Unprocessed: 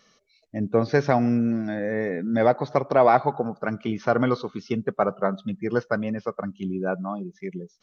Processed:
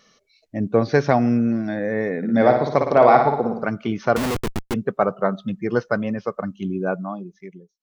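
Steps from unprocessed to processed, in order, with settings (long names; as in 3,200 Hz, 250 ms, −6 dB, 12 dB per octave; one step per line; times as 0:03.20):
fade-out on the ending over 0.95 s
0:02.17–0:03.63: flutter between parallel walls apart 9.7 metres, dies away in 0.63 s
0:04.16–0:04.74: comparator with hysteresis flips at −30.5 dBFS
level +3 dB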